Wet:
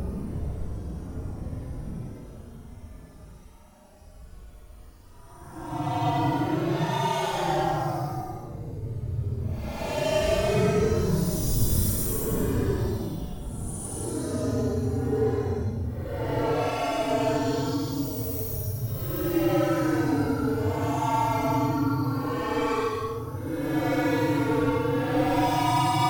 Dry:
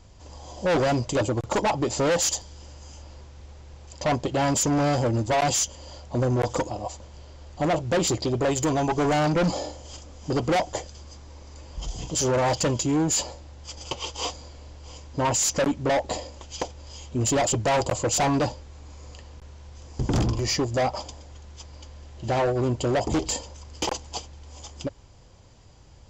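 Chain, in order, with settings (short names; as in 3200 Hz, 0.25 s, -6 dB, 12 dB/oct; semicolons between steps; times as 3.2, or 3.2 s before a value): inharmonic rescaling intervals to 124%; wind noise 170 Hz -37 dBFS; Paulstretch 13×, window 0.05 s, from 7.16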